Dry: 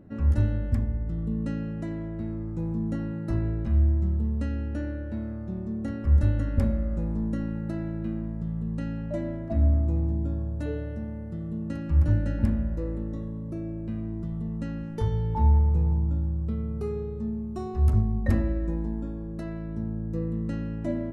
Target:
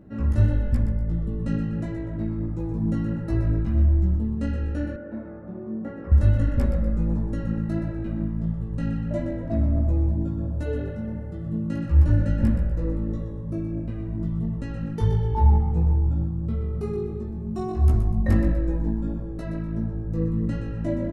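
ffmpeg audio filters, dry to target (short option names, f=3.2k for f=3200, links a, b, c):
-filter_complex "[0:a]asplit=2[a][b];[b]asplit=4[c][d][e][f];[c]adelay=123,afreqshift=-47,volume=-9.5dB[g];[d]adelay=246,afreqshift=-94,volume=-18.6dB[h];[e]adelay=369,afreqshift=-141,volume=-27.7dB[i];[f]adelay=492,afreqshift=-188,volume=-36.9dB[j];[g][h][i][j]amix=inputs=4:normalize=0[k];[a][k]amix=inputs=2:normalize=0,flanger=delay=15.5:depth=3.5:speed=1.5,asettb=1/sr,asplit=3[l][m][n];[l]atrim=end=4.964[o];[m]atrim=start=4.96:end=6.12,asetpts=PTS-STARTPTS,afade=t=in:d=0.004:c=qsin,afade=t=out:st=1.156:d=0.004:c=qsin,acrossover=split=200 2100:gain=0.158 1 0.1[p][q][r];[p][q][r]amix=inputs=3:normalize=0[s];[n]atrim=start=6.116[t];[o][s]acrossfade=d=0.004:c1=hsin:c2=qsin[u];[u][t]acrossfade=d=0.004:c1=qsin:c2=hsin,volume=5.5dB"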